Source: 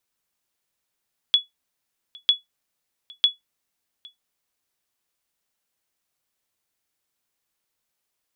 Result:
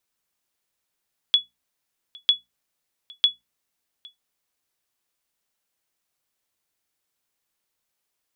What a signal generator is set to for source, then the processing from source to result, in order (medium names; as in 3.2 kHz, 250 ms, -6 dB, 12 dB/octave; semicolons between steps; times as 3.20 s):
sonar ping 3.39 kHz, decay 0.15 s, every 0.95 s, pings 3, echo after 0.81 s, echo -26.5 dB -8 dBFS
hum notches 60/120/180/240 Hz